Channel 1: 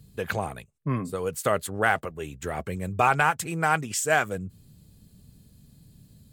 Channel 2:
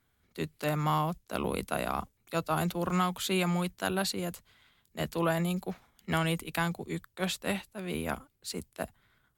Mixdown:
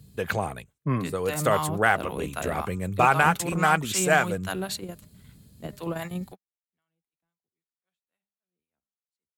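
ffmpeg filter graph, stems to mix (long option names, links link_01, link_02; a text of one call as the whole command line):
ffmpeg -i stem1.wav -i stem2.wav -filter_complex "[0:a]highpass=46,volume=1.5dB,asplit=2[link_01][link_02];[1:a]equalizer=frequency=4900:width_type=o:width=0.25:gain=-5,acrossover=split=720[link_03][link_04];[link_03]aeval=exprs='val(0)*(1-0.7/2+0.7/2*cos(2*PI*3.8*n/s))':channel_layout=same[link_05];[link_04]aeval=exprs='val(0)*(1-0.7/2-0.7/2*cos(2*PI*3.8*n/s))':channel_layout=same[link_06];[link_05][link_06]amix=inputs=2:normalize=0,bandreject=frequency=202.1:width_type=h:width=4,bandreject=frequency=404.2:width_type=h:width=4,bandreject=frequency=606.3:width_type=h:width=4,bandreject=frequency=808.4:width_type=h:width=4,bandreject=frequency=1010.5:width_type=h:width=4,bandreject=frequency=1212.6:width_type=h:width=4,bandreject=frequency=1414.7:width_type=h:width=4,bandreject=frequency=1616.8:width_type=h:width=4,bandreject=frequency=1818.9:width_type=h:width=4,bandreject=frequency=2021:width_type=h:width=4,bandreject=frequency=2223.1:width_type=h:width=4,bandreject=frequency=2425.2:width_type=h:width=4,bandreject=frequency=2627.3:width_type=h:width=4,adelay=650,volume=2.5dB[link_07];[link_02]apad=whole_len=442152[link_08];[link_07][link_08]sidechaingate=range=-55dB:threshold=-51dB:ratio=16:detection=peak[link_09];[link_01][link_09]amix=inputs=2:normalize=0" out.wav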